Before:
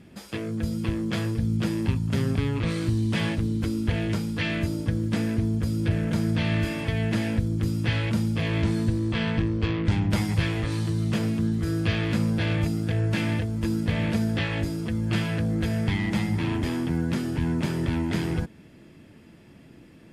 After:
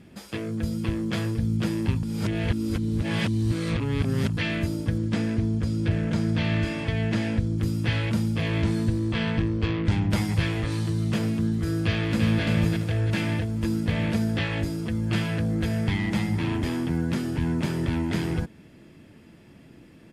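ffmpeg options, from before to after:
-filter_complex "[0:a]asettb=1/sr,asplit=3[s0][s1][s2];[s0]atrim=end=4.984[s3];[s1]atrim=start=4.98:end=7.58,asetpts=PTS-STARTPTS,afade=t=in:d=0.004:c=qsin,afade=t=out:st=2.596:d=0.004:c=qsin,lowpass=7900[s4];[s2]atrim=start=7.576[s5];[s3][s4]acrossfade=d=0.004:c1=hsin:c2=qsin[s6];[s6][s5]acrossfade=d=0.004:c1=qsin:c2=hsin,asplit=2[s7][s8];[s8]afade=t=in:st=11.79:d=0.01,afade=t=out:st=12.42:d=0.01,aecho=0:1:340|680|1020|1360|1700|2040:0.668344|0.300755|0.13534|0.0609028|0.0274063|0.0123328[s9];[s7][s9]amix=inputs=2:normalize=0,asplit=3[s10][s11][s12];[s10]atrim=end=2.032[s13];[s11]atrim=start=2.028:end=4.372,asetpts=PTS-STARTPTS,areverse[s14];[s12]atrim=start=4.368[s15];[s13][s14]acrossfade=d=0.004:c1=hsin:c2=hsin[s16];[s16][s15]acrossfade=d=0.004:c1=hsin:c2=hsin"

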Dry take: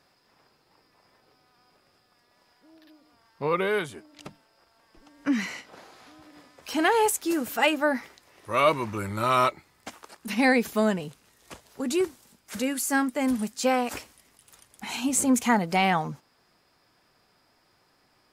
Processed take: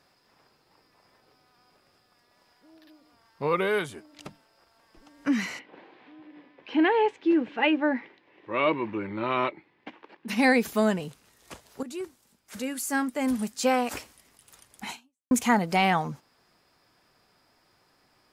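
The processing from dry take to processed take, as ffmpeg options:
-filter_complex "[0:a]asplit=3[s0][s1][s2];[s0]afade=t=out:st=5.58:d=0.02[s3];[s1]highpass=180,equalizer=f=320:t=q:w=4:g=6,equalizer=f=670:t=q:w=4:g=-6,equalizer=f=1300:t=q:w=4:g=-10,lowpass=f=3000:w=0.5412,lowpass=f=3000:w=1.3066,afade=t=in:st=5.58:d=0.02,afade=t=out:st=10.28:d=0.02[s4];[s2]afade=t=in:st=10.28:d=0.02[s5];[s3][s4][s5]amix=inputs=3:normalize=0,asplit=3[s6][s7][s8];[s6]atrim=end=11.83,asetpts=PTS-STARTPTS,afade=t=out:st=11.826:d=0.004:c=hsin:silence=0.223872[s9];[s7]atrim=start=11.83:end=15.31,asetpts=PTS-STARTPTS,afade=t=in:d=1.76:silence=0.223872,afade=t=out:st=3.07:d=0.41:c=exp[s10];[s8]atrim=start=15.31,asetpts=PTS-STARTPTS,afade=t=in:d=0.004:c=hsin[s11];[s9][s10][s11]concat=n=3:v=0:a=1"

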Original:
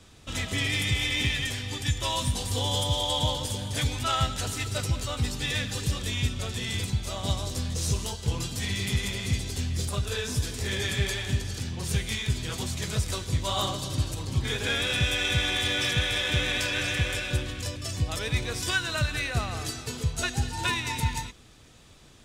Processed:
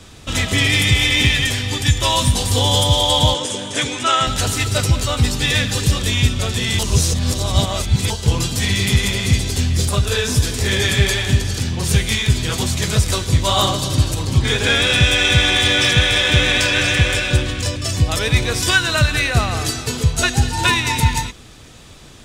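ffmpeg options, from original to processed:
-filter_complex "[0:a]asettb=1/sr,asplit=3[s0][s1][s2];[s0]atrim=end=3.344[s3];[s1]atrim=start=3.34:end=4.27,asetpts=PTS-STARTPTS,afade=t=in:d=0.004:c=qsin,afade=t=out:st=0.926:d=0.004:c=qsin,highpass=260,equalizer=f=340:t=q:w=4:g=4,equalizer=f=790:t=q:w=4:g=-5,equalizer=f=4500:t=q:w=4:g=-9,lowpass=f=8800:w=0.5412,lowpass=f=8800:w=1.3066[s4];[s2]atrim=start=4.266[s5];[s3][s4]acrossfade=d=0.004:c1=hsin:c2=qsin[s6];[s6][s5]acrossfade=d=0.004:c1=qsin:c2=hsin,asettb=1/sr,asplit=3[s7][s8][s9];[s7]atrim=end=14.374[s10];[s8]atrim=start=14.37:end=17.87,asetpts=PTS-STARTPTS,afade=t=in:d=0.004:c=qsin,afade=t=out:st=3.496:d=0.004:c=qsin,equalizer=f=12000:w=4.6:g=-13[s11];[s9]atrim=start=17.866[s12];[s10][s11]acrossfade=d=0.004:c1=hsin:c2=qsin[s13];[s13][s12]acrossfade=d=0.004:c1=qsin:c2=hsin,asplit=3[s14][s15][s16];[s14]atrim=end=6.792[s17];[s15]atrim=start=6.788:end=8.102,asetpts=PTS-STARTPTS,areverse[s18];[s16]atrim=start=8.098[s19];[s17][s18]acrossfade=d=0.004:c1=hsin:c2=hsin[s20];[s20][s19]acrossfade=d=0.004:c1=hsin:c2=hsin,acontrast=34,volume=2.11"

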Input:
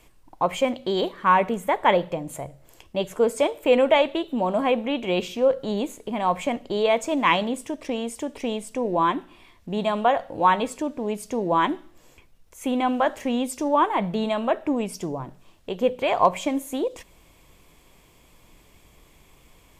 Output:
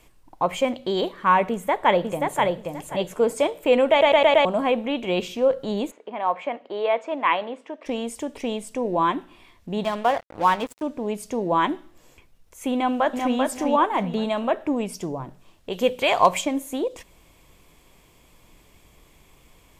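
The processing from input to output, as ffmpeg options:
-filter_complex "[0:a]asplit=2[s0][s1];[s1]afade=t=in:st=1.51:d=0.01,afade=t=out:st=2.43:d=0.01,aecho=0:1:530|1060|1590:0.707946|0.141589|0.0283178[s2];[s0][s2]amix=inputs=2:normalize=0,asplit=3[s3][s4][s5];[s3]afade=t=out:st=5.9:d=0.02[s6];[s4]highpass=450,lowpass=2300,afade=t=in:st=5.9:d=0.02,afade=t=out:st=7.85:d=0.02[s7];[s5]afade=t=in:st=7.85:d=0.02[s8];[s6][s7][s8]amix=inputs=3:normalize=0,asettb=1/sr,asplit=3[s9][s10][s11];[s9]atrim=end=9.844[s12];[s10]atrim=start=9.84:end=10.83,asetpts=PTS-STARTPTS,afade=t=in:d=0.004:c=qsin,afade=t=out:st=0.986:d=0.004:c=qsin,aeval=exprs='sgn(val(0))*max(abs(val(0))-0.02,0)':c=same[s13];[s11]atrim=start=10.826[s14];[s12][s13]acrossfade=d=0.004:c1=hsin:c2=qsin[s15];[s15][s14]acrossfade=d=0.004:c1=qsin:c2=hsin,asplit=2[s16][s17];[s17]afade=t=in:st=12.74:d=0.01,afade=t=out:st=13.37:d=0.01,aecho=0:1:390|780|1170|1560:0.630957|0.220835|0.0772923|0.0270523[s18];[s16][s18]amix=inputs=2:normalize=0,asplit=3[s19][s20][s21];[s19]afade=t=out:st=15.71:d=0.02[s22];[s20]highshelf=f=2200:g=11.5,afade=t=in:st=15.71:d=0.02,afade=t=out:st=16.4:d=0.02[s23];[s21]afade=t=in:st=16.4:d=0.02[s24];[s22][s23][s24]amix=inputs=3:normalize=0,asplit=6[s25][s26][s27][s28][s29][s30];[s25]atrim=end=4.012[s31];[s26]atrim=start=3.898:end=4.012[s32];[s27]atrim=start=3.898:end=4.012[s33];[s28]atrim=start=3.898:end=4.012[s34];[s29]atrim=start=3.898:end=4.012[s35];[s30]atrim=start=4.448[s36];[s31][s32]acrossfade=d=0.004:c1=hsin:c2=hsin[s37];[s37][s33]acrossfade=d=0.004:c1=hsin:c2=hsin[s38];[s38][s34]acrossfade=d=0.004:c1=hsin:c2=hsin[s39];[s39][s35]acrossfade=d=0.004:c1=hsin:c2=hsin[s40];[s40][s36]acrossfade=d=0.004:c1=hsin:c2=hsin"

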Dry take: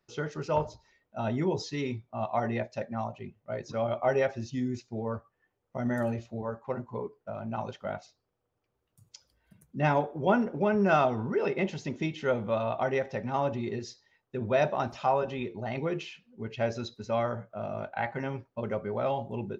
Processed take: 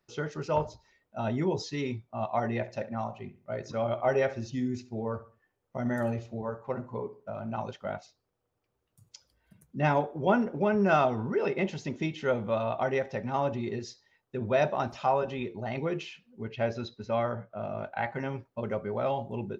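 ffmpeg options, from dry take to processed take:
-filter_complex "[0:a]asettb=1/sr,asplit=3[s0][s1][s2];[s0]atrim=end=2.474[s3];[s1]atrim=start=2.47:end=7.55,asetpts=PTS-STARTPTS,afade=t=in:d=0.004:c=qsin,afade=t=out:st=5.076:d=0.004:c=qsin,asplit=2[s4][s5];[s5]adelay=68,lowpass=f=3300:p=1,volume=0.178,asplit=2[s6][s7];[s7]adelay=68,lowpass=f=3300:p=1,volume=0.34,asplit=2[s8][s9];[s9]adelay=68,lowpass=f=3300:p=1,volume=0.34[s10];[s4][s6][s8][s10]amix=inputs=4:normalize=0,atrim=end_sample=224028[s11];[s2]atrim=start=7.546[s12];[s3][s11]acrossfade=d=0.004:c1=hsin:c2=qsin[s13];[s13][s12]acrossfade=d=0.004:c1=qsin:c2=hsin,asettb=1/sr,asplit=3[s14][s15][s16];[s14]atrim=end=16.484[s17];[s15]atrim=start=16.48:end=17.85,asetpts=PTS-STARTPTS,afade=t=in:d=0.004:c=qsin,afade=t=out:st=1.366:d=0.004:c=qsin,lowpass=4600[s18];[s16]atrim=start=17.846[s19];[s17][s18]acrossfade=d=0.004:c1=hsin:c2=qsin[s20];[s20][s19]acrossfade=d=0.004:c1=qsin:c2=hsin"

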